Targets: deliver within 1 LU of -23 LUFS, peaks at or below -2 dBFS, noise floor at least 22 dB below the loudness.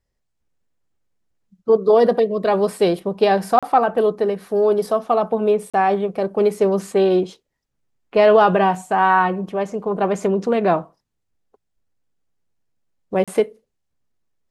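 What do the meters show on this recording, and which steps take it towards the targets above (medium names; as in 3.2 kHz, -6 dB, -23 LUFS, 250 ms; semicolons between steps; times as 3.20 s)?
dropouts 3; longest dropout 36 ms; loudness -18.5 LUFS; peak level -2.5 dBFS; loudness target -23.0 LUFS
-> interpolate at 3.59/5.70/13.24 s, 36 ms; trim -4.5 dB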